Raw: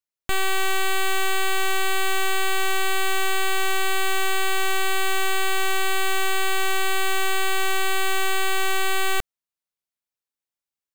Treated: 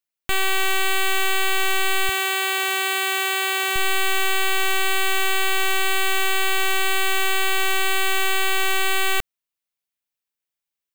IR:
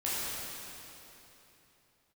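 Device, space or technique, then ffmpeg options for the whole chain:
presence and air boost: -filter_complex "[0:a]asettb=1/sr,asplit=3[link_01][link_02][link_03];[link_01]atrim=end=2.094[link_04];[link_02]atrim=start=2.09:end=3.76,asetpts=PTS-STARTPTS,afade=type=in:duration=0.004:curve=qsin,afade=type=out:start_time=1.666:duration=0.004:curve=qsin,highpass=frequency=210:poles=1[link_05];[link_03]atrim=start=3.756[link_06];[link_04][link_05]acrossfade=duration=0.004:curve1=hsin:curve2=qsin[link_07];[link_07][link_06]acrossfade=duration=0.004:curve1=qsin:curve2=hsin,equalizer=frequency=2600:width_type=o:width=1.2:gain=4.5,highshelf=frequency=12000:gain=7"

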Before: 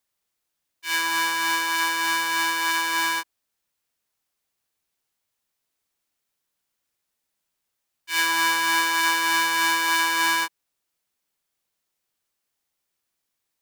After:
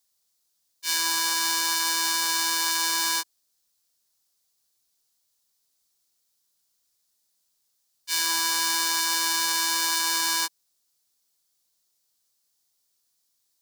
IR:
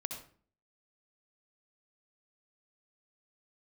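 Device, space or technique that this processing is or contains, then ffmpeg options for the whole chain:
over-bright horn tweeter: -af "highshelf=frequency=3400:width_type=q:width=1.5:gain=9,alimiter=limit=-7dB:level=0:latency=1:release=16,volume=-2dB"

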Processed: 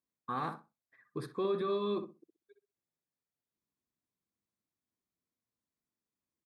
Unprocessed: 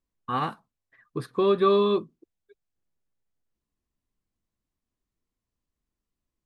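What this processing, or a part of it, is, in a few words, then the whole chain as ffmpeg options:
PA system with an anti-feedback notch: -filter_complex "[0:a]highpass=130,asuperstop=centerf=2900:order=4:qfactor=6.6,alimiter=limit=-21dB:level=0:latency=1:release=11,asplit=2[link_01][link_02];[link_02]adelay=63,lowpass=frequency=1400:poles=1,volume=-8dB,asplit=2[link_03][link_04];[link_04]adelay=63,lowpass=frequency=1400:poles=1,volume=0.21,asplit=2[link_05][link_06];[link_06]adelay=63,lowpass=frequency=1400:poles=1,volume=0.21[link_07];[link_01][link_03][link_05][link_07]amix=inputs=4:normalize=0,volume=-6dB"

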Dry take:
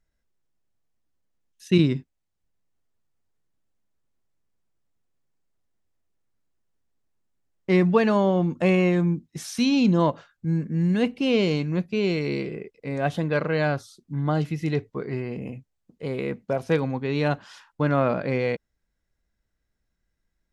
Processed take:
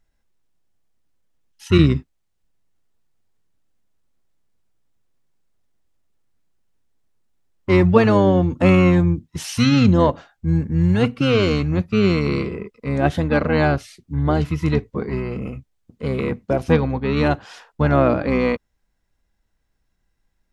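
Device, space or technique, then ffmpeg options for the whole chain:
octave pedal: -filter_complex "[0:a]asplit=3[link_01][link_02][link_03];[link_01]afade=type=out:start_time=16.71:duration=0.02[link_04];[link_02]lowpass=frequency=5700:width=0.5412,lowpass=frequency=5700:width=1.3066,afade=type=in:start_time=16.71:duration=0.02,afade=type=out:start_time=17.15:duration=0.02[link_05];[link_03]afade=type=in:start_time=17.15:duration=0.02[link_06];[link_04][link_05][link_06]amix=inputs=3:normalize=0,asplit=2[link_07][link_08];[link_08]asetrate=22050,aresample=44100,atempo=2,volume=-4dB[link_09];[link_07][link_09]amix=inputs=2:normalize=0,volume=4.5dB"

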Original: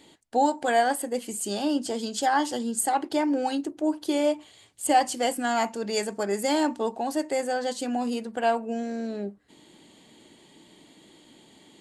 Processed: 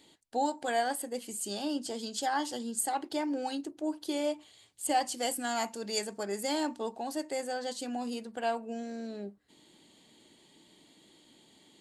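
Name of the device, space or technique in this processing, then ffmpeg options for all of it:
presence and air boost: -filter_complex "[0:a]asettb=1/sr,asplit=3[link_01][link_02][link_03];[link_01]atrim=end=5.184[link_04];[link_02]atrim=start=5.18:end=5.99,asetpts=PTS-STARTPTS,afade=type=in:duration=0.004:curve=qsin,afade=type=out:start_time=0.806:duration=0.004:curve=qsin,highshelf=frequency=6400:gain=7[link_05];[link_03]atrim=start=5.986[link_06];[link_04][link_05]acrossfade=duration=0.004:curve1=hsin:curve2=qsin[link_07];[link_07][link_06]acrossfade=duration=0.004:curve1=qsin:curve2=hsin,equalizer=frequency=4200:width_type=o:width=0.94:gain=4,highshelf=frequency=9200:gain=6,volume=-8dB"

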